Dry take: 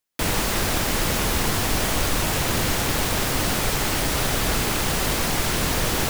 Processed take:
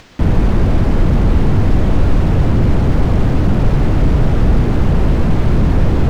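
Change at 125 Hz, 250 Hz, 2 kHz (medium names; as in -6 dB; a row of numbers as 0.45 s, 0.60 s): +15.0 dB, +11.5 dB, -4.5 dB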